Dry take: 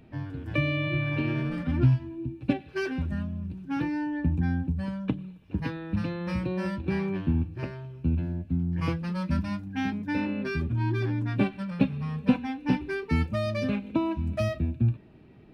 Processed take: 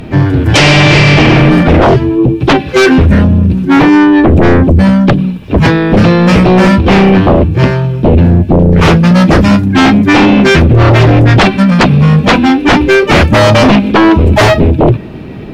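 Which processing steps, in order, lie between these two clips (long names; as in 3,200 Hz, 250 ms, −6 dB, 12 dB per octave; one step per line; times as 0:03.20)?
pitch-shifted copies added +5 semitones −11 dB
sine wavefolder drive 19 dB, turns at −7 dBFS
level +5.5 dB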